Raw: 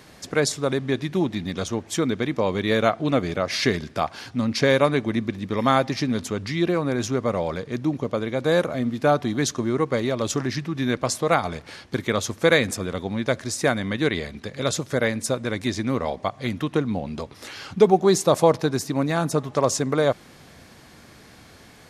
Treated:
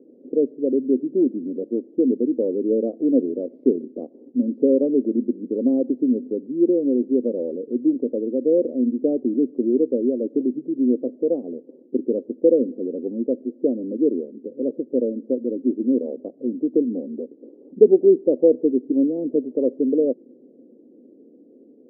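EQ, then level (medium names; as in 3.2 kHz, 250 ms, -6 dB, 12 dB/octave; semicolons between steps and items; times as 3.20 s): elliptic band-pass 250–520 Hz, stop band 60 dB; tilt EQ -4.5 dB/octave; -1.0 dB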